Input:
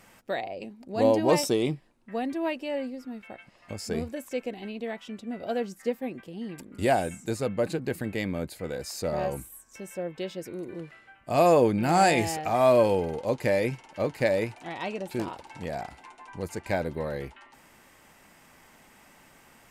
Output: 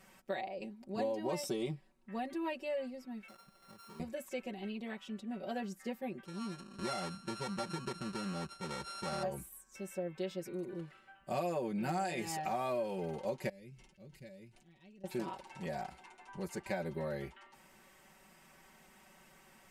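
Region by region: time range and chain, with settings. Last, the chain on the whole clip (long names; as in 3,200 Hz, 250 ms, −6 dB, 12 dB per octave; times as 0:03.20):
0:03.28–0:04.00: samples sorted by size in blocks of 32 samples + parametric band 1,100 Hz +4.5 dB 0.38 octaves + downward compressor 4 to 1, threshold −48 dBFS
0:06.25–0:09.23: samples sorted by size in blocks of 32 samples + low-pass filter 9,800 Hz 24 dB per octave + downward compressor 3 to 1, threshold −29 dBFS
0:13.49–0:15.04: guitar amp tone stack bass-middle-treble 10-0-1 + level that may fall only so fast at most 84 dB per second
whole clip: comb filter 5.3 ms, depth 94%; downward compressor 8 to 1, threshold −24 dBFS; level −8.5 dB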